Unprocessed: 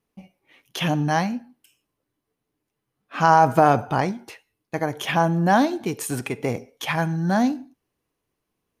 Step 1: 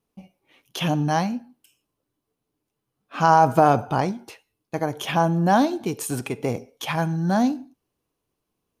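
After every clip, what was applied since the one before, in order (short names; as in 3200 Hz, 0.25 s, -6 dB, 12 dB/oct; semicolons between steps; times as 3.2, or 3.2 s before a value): bell 1900 Hz -6 dB 0.6 oct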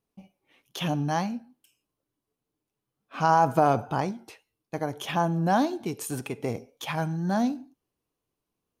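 wow and flutter 48 cents; gain -5 dB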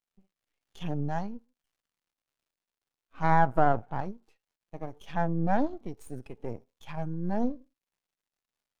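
crackle 440/s -44 dBFS; half-wave rectifier; spectral expander 1.5:1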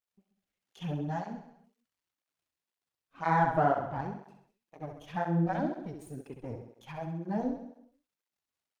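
feedback echo 66 ms, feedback 56%, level -7 dB; tape flanging out of phase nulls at 2 Hz, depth 5.9 ms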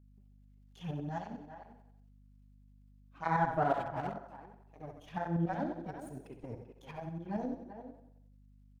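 speakerphone echo 0.39 s, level -9 dB; tremolo saw up 11 Hz, depth 55%; hum 50 Hz, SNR 21 dB; gain -2 dB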